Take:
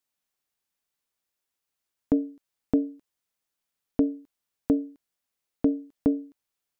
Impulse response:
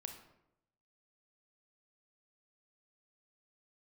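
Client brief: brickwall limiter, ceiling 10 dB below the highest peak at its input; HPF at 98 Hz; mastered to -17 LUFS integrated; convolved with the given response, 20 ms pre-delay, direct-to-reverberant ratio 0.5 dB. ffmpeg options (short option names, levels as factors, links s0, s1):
-filter_complex "[0:a]highpass=98,alimiter=limit=0.0841:level=0:latency=1,asplit=2[s0][s1];[1:a]atrim=start_sample=2205,adelay=20[s2];[s1][s2]afir=irnorm=-1:irlink=0,volume=1.41[s3];[s0][s3]amix=inputs=2:normalize=0,volume=7.5"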